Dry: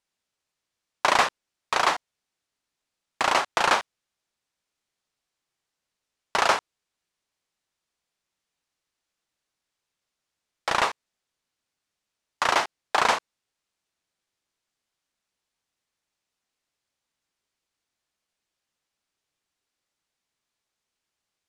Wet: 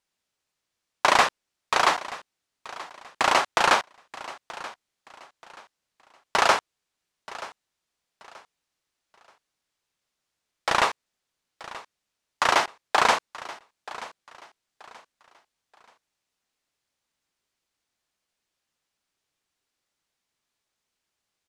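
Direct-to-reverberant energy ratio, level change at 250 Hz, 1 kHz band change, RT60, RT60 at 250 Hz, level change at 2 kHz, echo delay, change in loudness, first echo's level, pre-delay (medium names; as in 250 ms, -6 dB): no reverb, +1.5 dB, +1.5 dB, no reverb, no reverb, +1.5 dB, 930 ms, +1.5 dB, -17.5 dB, no reverb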